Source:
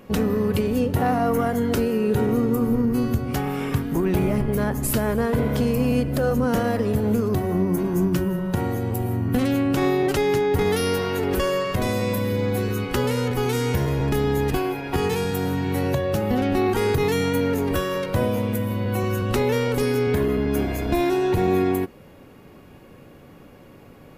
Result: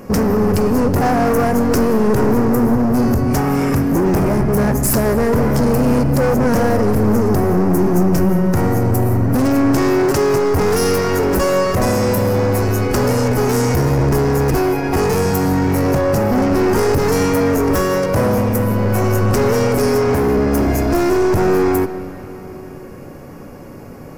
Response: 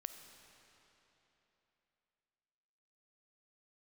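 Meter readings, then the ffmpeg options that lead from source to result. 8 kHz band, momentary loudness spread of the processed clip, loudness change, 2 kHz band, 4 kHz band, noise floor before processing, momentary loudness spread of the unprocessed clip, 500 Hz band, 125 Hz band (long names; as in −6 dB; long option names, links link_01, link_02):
+9.5 dB, 2 LU, +7.0 dB, +6.0 dB, +3.5 dB, −47 dBFS, 4 LU, +7.0 dB, +7.0 dB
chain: -filter_complex "[0:a]volume=24dB,asoftclip=hard,volume=-24dB,highshelf=frequency=4300:width_type=q:width=3:gain=7,asplit=2[link_01][link_02];[1:a]atrim=start_sample=2205,lowpass=2800[link_03];[link_02][link_03]afir=irnorm=-1:irlink=0,volume=7dB[link_04];[link_01][link_04]amix=inputs=2:normalize=0,volume=4dB"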